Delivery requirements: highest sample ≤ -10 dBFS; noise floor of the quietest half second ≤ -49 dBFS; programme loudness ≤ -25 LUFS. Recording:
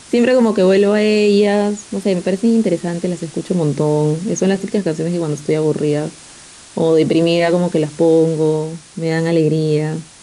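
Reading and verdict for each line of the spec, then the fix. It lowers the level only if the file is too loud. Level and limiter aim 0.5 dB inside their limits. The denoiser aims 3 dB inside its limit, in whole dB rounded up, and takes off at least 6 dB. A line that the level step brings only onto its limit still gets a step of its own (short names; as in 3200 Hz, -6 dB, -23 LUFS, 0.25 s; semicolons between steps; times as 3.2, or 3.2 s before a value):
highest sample -4.5 dBFS: fail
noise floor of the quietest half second -40 dBFS: fail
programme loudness -16.0 LUFS: fail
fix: gain -9.5 dB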